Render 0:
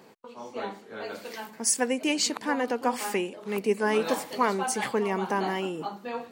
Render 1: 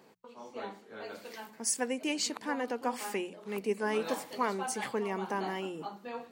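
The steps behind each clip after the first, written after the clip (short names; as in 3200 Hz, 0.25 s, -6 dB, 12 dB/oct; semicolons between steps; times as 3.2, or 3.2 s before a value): notches 60/120/180 Hz; gain -6.5 dB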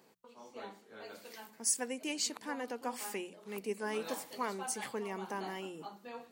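high shelf 4900 Hz +8 dB; gain -6 dB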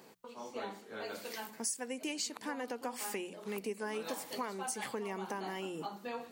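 compressor 4:1, threshold -44 dBFS, peak gain reduction 15 dB; gain +7.5 dB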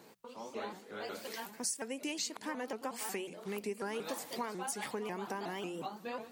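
shaped vibrato saw up 5.5 Hz, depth 160 cents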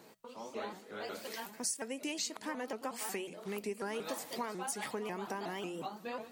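resonator 640 Hz, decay 0.15 s, harmonics all, mix 50%; gain +5.5 dB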